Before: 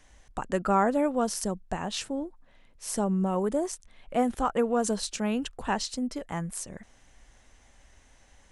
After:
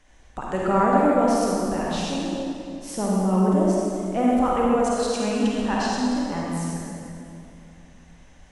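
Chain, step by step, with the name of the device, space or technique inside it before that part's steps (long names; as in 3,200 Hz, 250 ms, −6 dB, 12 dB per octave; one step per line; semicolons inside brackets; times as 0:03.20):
0:04.75–0:05.15: high-pass filter 540 Hz
swimming-pool hall (convolution reverb RT60 2.6 s, pre-delay 42 ms, DRR −5 dB; high-shelf EQ 5,900 Hz −7 dB)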